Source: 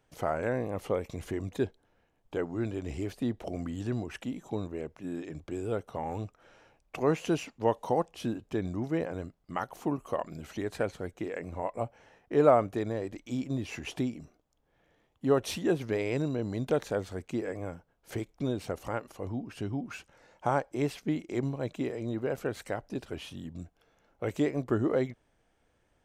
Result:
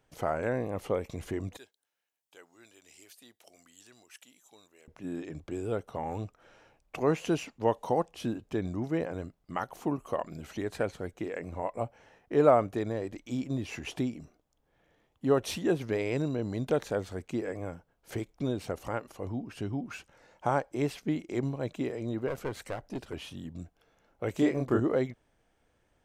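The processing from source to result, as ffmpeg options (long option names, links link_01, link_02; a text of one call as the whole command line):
ffmpeg -i in.wav -filter_complex "[0:a]asettb=1/sr,asplit=3[link_01][link_02][link_03];[link_01]atrim=end=1.574[link_04];[link_02]atrim=start=1.57:end=4.88,asetpts=PTS-STARTPTS,afade=type=in:duration=0.004:curve=qsin,afade=type=out:start_time=3.306:duration=0.004:curve=qsin,aderivative[link_05];[link_03]atrim=start=4.876[link_06];[link_04][link_05]acrossfade=duration=0.004:curve1=hsin:curve2=qsin[link_07];[link_07][link_06]acrossfade=duration=0.004:curve1=qsin:curve2=hsin,asettb=1/sr,asplit=3[link_08][link_09][link_10];[link_08]atrim=end=22.284[link_11];[link_09]atrim=start=22.28:end=23.13,asetpts=PTS-STARTPTS,afade=type=in:duration=0.004:curve=qsin,afade=type=out:start_time=0.846:duration=0.004:curve=qsin,aeval=exprs='clip(val(0),-1,0.0237)':channel_layout=same[link_12];[link_10]atrim=start=23.126[link_13];[link_11][link_12]acrossfade=duration=0.004:curve1=hsin:curve2=qsin[link_14];[link_14][link_13]acrossfade=duration=0.004:curve1=qsin:curve2=hsin,asettb=1/sr,asplit=3[link_15][link_16][link_17];[link_15]atrim=end=24.354[link_18];[link_16]atrim=start=24.35:end=24.8,asetpts=PTS-STARTPTS,afade=type=in:duration=0.004:curve=qsin,afade=type=out:start_time=0.446:duration=0.004:curve=qsin,asplit=2[link_19][link_20];[link_20]adelay=30,volume=-2dB[link_21];[link_19][link_21]amix=inputs=2:normalize=0,atrim=end_sample=19845[link_22];[link_17]atrim=start=24.796[link_23];[link_18][link_22]acrossfade=duration=0.004:curve1=hsin:curve2=qsin[link_24];[link_24][link_23]acrossfade=duration=0.004:curve1=qsin:curve2=hsin" out.wav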